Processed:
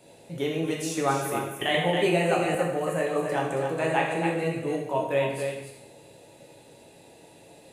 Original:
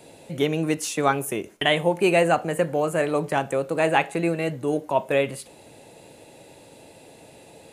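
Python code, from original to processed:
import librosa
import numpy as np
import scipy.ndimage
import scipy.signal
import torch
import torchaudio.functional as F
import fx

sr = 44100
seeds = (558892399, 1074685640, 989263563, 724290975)

p1 = x + fx.echo_single(x, sr, ms=275, db=-6.5, dry=0)
p2 = fx.rev_plate(p1, sr, seeds[0], rt60_s=0.8, hf_ratio=1.0, predelay_ms=0, drr_db=-1.0)
p3 = fx.band_squash(p2, sr, depth_pct=70, at=(1.74, 2.55))
y = p3 * 10.0 ** (-8.0 / 20.0)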